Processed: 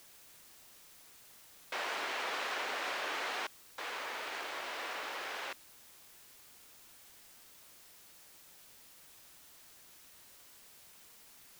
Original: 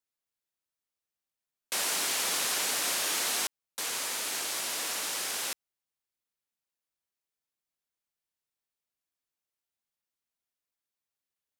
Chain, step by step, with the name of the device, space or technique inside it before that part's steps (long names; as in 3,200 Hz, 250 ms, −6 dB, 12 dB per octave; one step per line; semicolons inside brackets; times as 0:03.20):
wax cylinder (band-pass filter 390–2,200 Hz; tape wow and flutter; white noise bed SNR 14 dB)